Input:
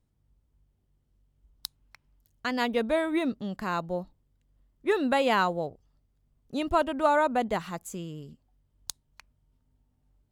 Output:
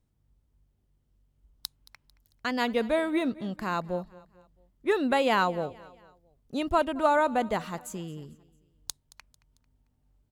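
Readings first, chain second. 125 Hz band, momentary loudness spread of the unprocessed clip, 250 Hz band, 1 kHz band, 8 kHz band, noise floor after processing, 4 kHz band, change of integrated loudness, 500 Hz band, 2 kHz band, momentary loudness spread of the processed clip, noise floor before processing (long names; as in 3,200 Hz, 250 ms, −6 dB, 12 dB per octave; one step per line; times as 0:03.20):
0.0 dB, 17 LU, 0.0 dB, 0.0 dB, 0.0 dB, −72 dBFS, 0.0 dB, 0.0 dB, 0.0 dB, 0.0 dB, 17 LU, −73 dBFS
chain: repeating echo 223 ms, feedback 45%, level −21 dB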